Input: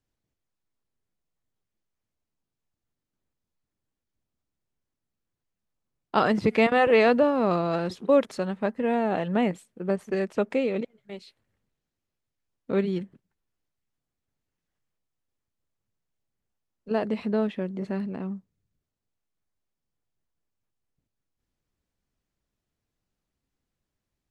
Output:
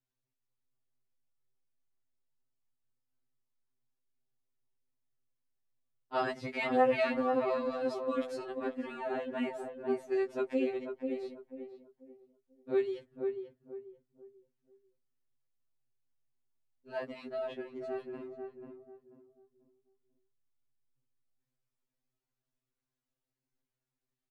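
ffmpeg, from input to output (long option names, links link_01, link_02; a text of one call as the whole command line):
ffmpeg -i in.wav -filter_complex "[0:a]equalizer=frequency=70:width_type=o:width=1.2:gain=-7.5,asplit=2[link_01][link_02];[link_02]adelay=490,lowpass=frequency=910:poles=1,volume=-4dB,asplit=2[link_03][link_04];[link_04]adelay=490,lowpass=frequency=910:poles=1,volume=0.33,asplit=2[link_05][link_06];[link_06]adelay=490,lowpass=frequency=910:poles=1,volume=0.33,asplit=2[link_07][link_08];[link_08]adelay=490,lowpass=frequency=910:poles=1,volume=0.33[link_09];[link_01][link_03][link_05][link_07][link_09]amix=inputs=5:normalize=0,afftfilt=real='re*2.45*eq(mod(b,6),0)':imag='im*2.45*eq(mod(b,6),0)':win_size=2048:overlap=0.75,volume=-6.5dB" out.wav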